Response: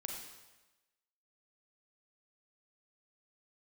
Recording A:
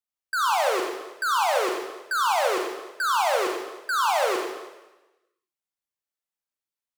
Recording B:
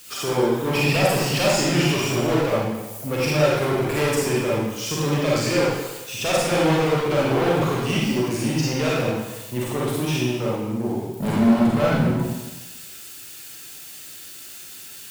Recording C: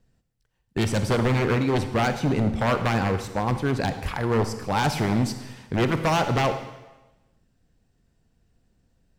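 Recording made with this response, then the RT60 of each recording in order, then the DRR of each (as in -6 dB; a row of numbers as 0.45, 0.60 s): A; 1.1, 1.1, 1.1 s; 0.5, -6.0, 8.5 dB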